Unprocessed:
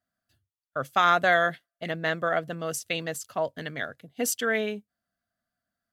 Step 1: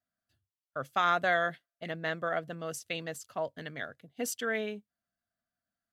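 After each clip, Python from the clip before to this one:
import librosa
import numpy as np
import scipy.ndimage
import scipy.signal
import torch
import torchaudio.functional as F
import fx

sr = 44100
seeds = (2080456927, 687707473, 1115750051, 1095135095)

y = fx.high_shelf(x, sr, hz=7900.0, db=-4.5)
y = F.gain(torch.from_numpy(y), -6.0).numpy()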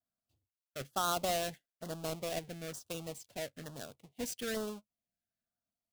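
y = fx.halfwave_hold(x, sr)
y = fx.filter_lfo_notch(y, sr, shape='saw_down', hz=1.1, low_hz=870.0, high_hz=2400.0, q=0.91)
y = F.gain(torch.from_numpy(y), -7.5).numpy()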